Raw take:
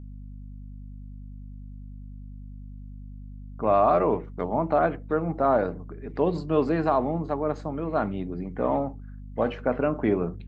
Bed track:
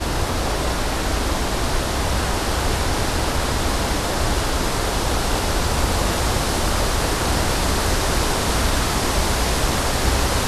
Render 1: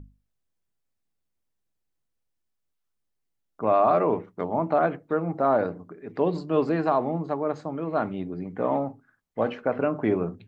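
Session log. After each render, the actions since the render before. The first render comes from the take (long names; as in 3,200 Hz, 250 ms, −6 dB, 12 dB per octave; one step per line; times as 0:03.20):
mains-hum notches 50/100/150/200/250 Hz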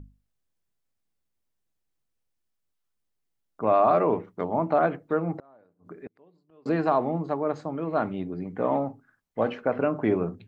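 0:05.39–0:06.66: gate with flip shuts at −29 dBFS, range −34 dB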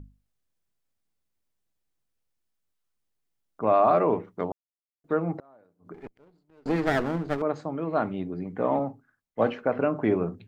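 0:04.52–0:05.04: silence
0:05.94–0:07.42: lower of the sound and its delayed copy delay 0.42 ms
0:08.79–0:09.51: multiband upward and downward expander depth 40%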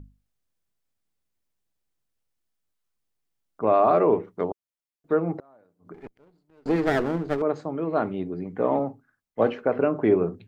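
dynamic equaliser 400 Hz, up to +6 dB, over −39 dBFS, Q 2.2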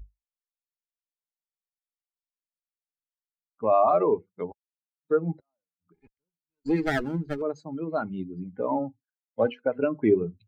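spectral dynamics exaggerated over time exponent 2
in parallel at +1 dB: downward compressor, threshold −35 dBFS, peak gain reduction 17 dB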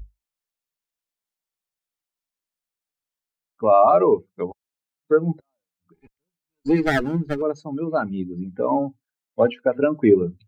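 level +6 dB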